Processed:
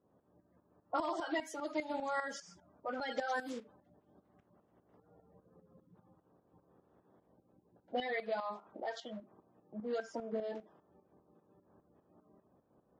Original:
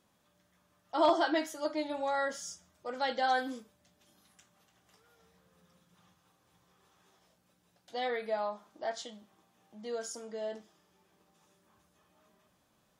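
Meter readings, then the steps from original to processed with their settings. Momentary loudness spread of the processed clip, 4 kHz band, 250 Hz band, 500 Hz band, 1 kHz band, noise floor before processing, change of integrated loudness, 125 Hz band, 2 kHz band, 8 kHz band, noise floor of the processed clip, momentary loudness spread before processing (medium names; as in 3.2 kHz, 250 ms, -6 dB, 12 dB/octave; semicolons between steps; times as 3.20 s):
11 LU, -8.0 dB, -4.5 dB, -5.5 dB, -6.5 dB, -72 dBFS, -6.0 dB, no reading, -4.0 dB, -9.5 dB, -75 dBFS, 15 LU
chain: coarse spectral quantiser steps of 30 dB; high-pass 150 Hz 6 dB/octave; level-controlled noise filter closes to 490 Hz, open at -29.5 dBFS; compression 4:1, threshold -44 dBFS, peak gain reduction 18.5 dB; tremolo saw up 5 Hz, depth 70%; trim +11 dB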